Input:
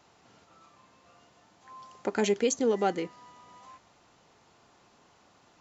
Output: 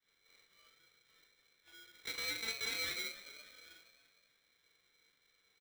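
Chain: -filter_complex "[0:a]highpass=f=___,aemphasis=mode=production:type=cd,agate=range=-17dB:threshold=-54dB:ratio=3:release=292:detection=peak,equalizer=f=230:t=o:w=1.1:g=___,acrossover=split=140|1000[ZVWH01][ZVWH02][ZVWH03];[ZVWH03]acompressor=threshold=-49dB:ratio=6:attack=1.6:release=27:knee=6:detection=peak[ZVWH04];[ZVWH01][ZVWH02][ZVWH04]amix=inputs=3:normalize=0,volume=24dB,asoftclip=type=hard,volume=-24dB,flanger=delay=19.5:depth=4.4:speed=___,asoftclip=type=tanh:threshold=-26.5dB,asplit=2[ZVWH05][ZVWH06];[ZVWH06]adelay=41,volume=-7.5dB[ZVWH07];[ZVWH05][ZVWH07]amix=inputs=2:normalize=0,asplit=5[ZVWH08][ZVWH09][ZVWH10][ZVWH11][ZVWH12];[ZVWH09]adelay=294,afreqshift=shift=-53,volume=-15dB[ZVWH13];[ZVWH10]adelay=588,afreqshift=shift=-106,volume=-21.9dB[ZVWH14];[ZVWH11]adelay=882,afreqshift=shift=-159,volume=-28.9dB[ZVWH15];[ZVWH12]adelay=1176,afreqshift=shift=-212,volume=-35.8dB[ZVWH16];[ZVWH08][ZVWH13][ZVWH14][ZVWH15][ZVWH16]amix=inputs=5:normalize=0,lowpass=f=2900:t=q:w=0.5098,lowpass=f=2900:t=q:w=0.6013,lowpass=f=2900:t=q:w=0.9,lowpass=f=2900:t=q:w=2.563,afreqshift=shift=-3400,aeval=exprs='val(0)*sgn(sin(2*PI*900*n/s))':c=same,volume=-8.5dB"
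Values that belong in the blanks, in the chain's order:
44, 14.5, 1.4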